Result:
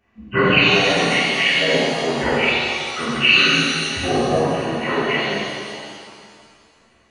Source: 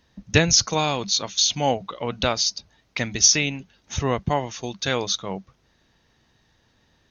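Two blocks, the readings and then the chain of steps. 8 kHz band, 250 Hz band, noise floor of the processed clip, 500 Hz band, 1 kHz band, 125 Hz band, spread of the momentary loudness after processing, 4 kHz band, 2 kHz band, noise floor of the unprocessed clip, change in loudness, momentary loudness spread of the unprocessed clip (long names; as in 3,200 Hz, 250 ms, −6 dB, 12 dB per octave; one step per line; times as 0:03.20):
can't be measured, +6.5 dB, −56 dBFS, +7.0 dB, +5.0 dB, +1.0 dB, 12 LU, +5.0 dB, +12.5 dB, −65 dBFS, +4.5 dB, 16 LU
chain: partials spread apart or drawn together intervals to 76%
reverb with rising layers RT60 2.1 s, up +7 semitones, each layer −8 dB, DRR −9 dB
level −3.5 dB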